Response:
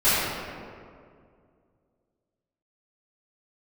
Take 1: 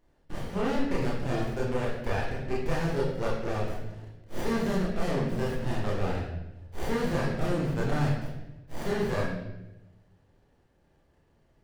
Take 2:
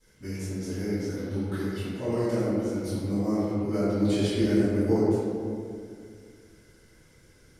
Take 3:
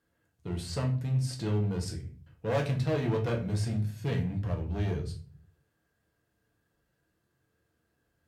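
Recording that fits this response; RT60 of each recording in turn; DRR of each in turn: 2; 0.95 s, 2.2 s, 0.40 s; -5.5 dB, -16.0 dB, 0.5 dB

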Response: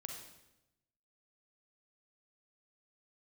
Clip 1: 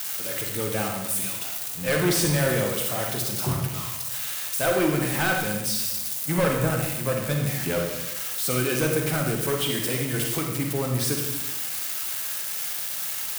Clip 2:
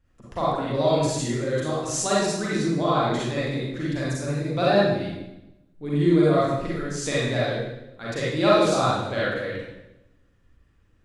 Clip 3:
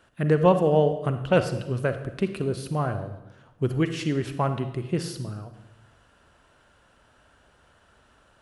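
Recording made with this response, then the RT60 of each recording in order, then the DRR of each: 1; 0.95 s, 0.95 s, 0.95 s; 1.5 dB, -8.0 dB, 9.0 dB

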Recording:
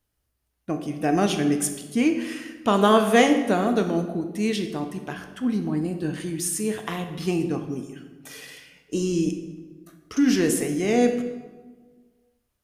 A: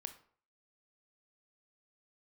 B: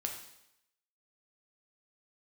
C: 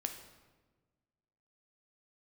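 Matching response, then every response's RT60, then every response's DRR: C; 0.50 s, 0.80 s, 1.3 s; 8.0 dB, 1.5 dB, 5.5 dB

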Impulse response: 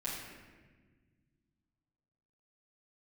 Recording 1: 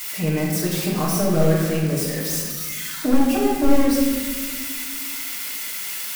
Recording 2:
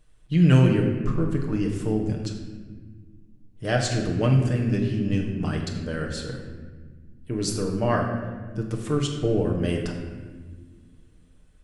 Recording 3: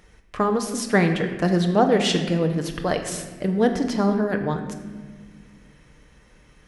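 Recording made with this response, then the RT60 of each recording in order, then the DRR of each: 1; 1.5 s, 1.5 s, 1.5 s; -8.5 dB, -0.5 dB, 4.5 dB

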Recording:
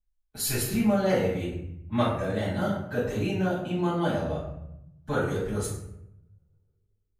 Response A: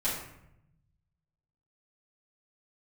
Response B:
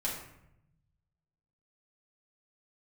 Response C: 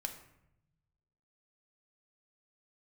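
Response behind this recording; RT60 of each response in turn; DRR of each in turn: A; 0.80 s, 0.80 s, 0.80 s; -10.0 dB, -5.5 dB, 4.0 dB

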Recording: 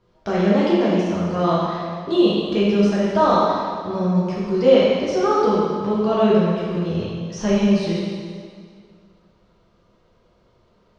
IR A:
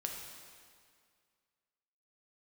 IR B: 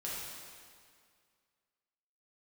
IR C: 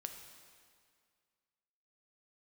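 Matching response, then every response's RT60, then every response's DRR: B; 2.1 s, 2.1 s, 2.1 s; 0.5 dB, -7.5 dB, 5.0 dB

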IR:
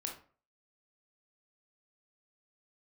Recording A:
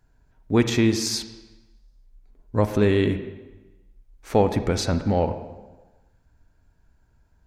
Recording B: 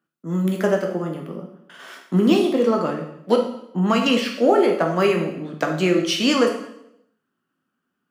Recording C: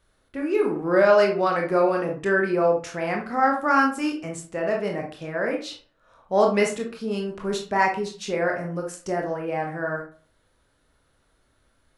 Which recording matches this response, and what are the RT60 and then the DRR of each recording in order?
C; 1.2 s, 0.80 s, 0.45 s; 9.5 dB, 1.0 dB, 0.5 dB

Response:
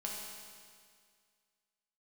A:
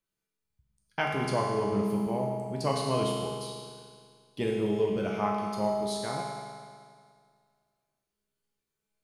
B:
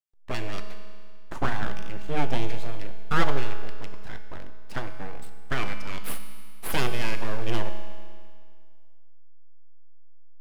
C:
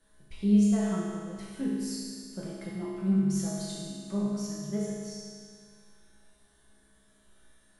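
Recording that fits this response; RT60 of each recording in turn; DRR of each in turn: A; 2.0 s, 2.0 s, 2.0 s; -3.5 dB, 6.5 dB, -8.0 dB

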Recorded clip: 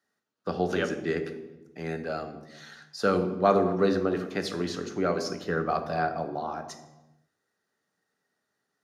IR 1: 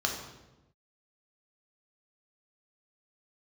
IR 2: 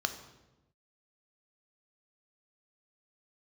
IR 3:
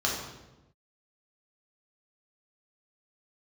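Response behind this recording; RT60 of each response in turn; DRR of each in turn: 2; 1.0 s, 1.0 s, 1.0 s; 1.0 dB, 8.0 dB, -3.5 dB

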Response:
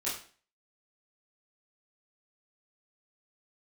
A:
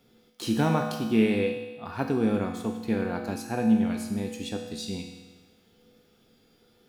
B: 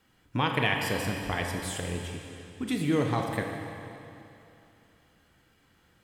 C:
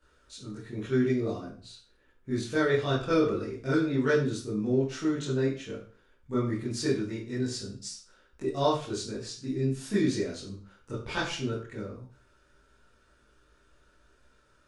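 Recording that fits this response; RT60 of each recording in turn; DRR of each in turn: C; 1.3 s, 2.8 s, 0.40 s; 2.0 dB, 1.5 dB, -9.5 dB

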